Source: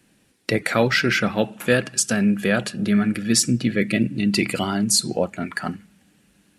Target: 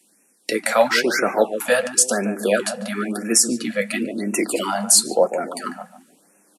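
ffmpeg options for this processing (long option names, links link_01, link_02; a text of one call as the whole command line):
ffmpeg -i in.wav -filter_complex "[0:a]highpass=frequency=230:width=0.5412,highpass=frequency=230:width=1.3066,equalizer=frequency=10000:width=0.57:gain=12.5,asplit=2[link_01][link_02];[link_02]adelay=146,lowpass=frequency=850:poles=1,volume=-7.5dB,asplit=2[link_03][link_04];[link_04]adelay=146,lowpass=frequency=850:poles=1,volume=0.36,asplit=2[link_05][link_06];[link_06]adelay=146,lowpass=frequency=850:poles=1,volume=0.36,asplit=2[link_07][link_08];[link_08]adelay=146,lowpass=frequency=850:poles=1,volume=0.36[link_09];[link_03][link_05][link_07][link_09]amix=inputs=4:normalize=0[link_10];[link_01][link_10]amix=inputs=2:normalize=0,flanger=delay=5.3:depth=4.6:regen=-55:speed=0.94:shape=sinusoidal,acrossover=split=460|1100[link_11][link_12][link_13];[link_12]dynaudnorm=framelen=390:gausssize=3:maxgain=12.5dB[link_14];[link_11][link_14][link_13]amix=inputs=3:normalize=0,alimiter=level_in=2dB:limit=-1dB:release=50:level=0:latency=1,afftfilt=real='re*(1-between(b*sr/1024,310*pow(4000/310,0.5+0.5*sin(2*PI*0.98*pts/sr))/1.41,310*pow(4000/310,0.5+0.5*sin(2*PI*0.98*pts/sr))*1.41))':imag='im*(1-between(b*sr/1024,310*pow(4000/310,0.5+0.5*sin(2*PI*0.98*pts/sr))/1.41,310*pow(4000/310,0.5+0.5*sin(2*PI*0.98*pts/sr))*1.41))':win_size=1024:overlap=0.75,volume=-1dB" out.wav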